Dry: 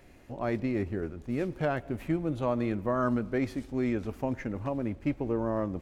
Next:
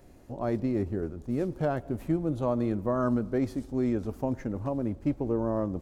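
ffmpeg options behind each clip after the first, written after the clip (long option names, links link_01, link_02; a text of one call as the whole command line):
ffmpeg -i in.wav -af "equalizer=frequency=2300:width_type=o:width=1.4:gain=-11,volume=2dB" out.wav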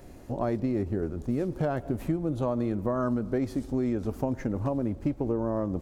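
ffmpeg -i in.wav -af "acompressor=threshold=-32dB:ratio=4,volume=6.5dB" out.wav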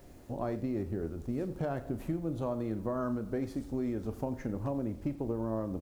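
ffmpeg -i in.wav -filter_complex "[0:a]asplit=2[link_01][link_02];[link_02]adelay=36,volume=-12dB[link_03];[link_01][link_03]amix=inputs=2:normalize=0,acrusher=bits=9:mix=0:aa=0.000001,aecho=1:1:89:0.141,volume=-6dB" out.wav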